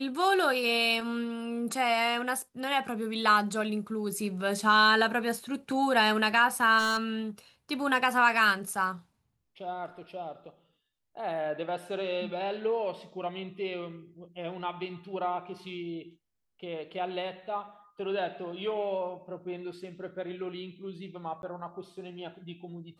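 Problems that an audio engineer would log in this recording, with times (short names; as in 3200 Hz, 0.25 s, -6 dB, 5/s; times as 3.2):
6.78–7.04 clipped -24.5 dBFS
21.42–21.43 gap 11 ms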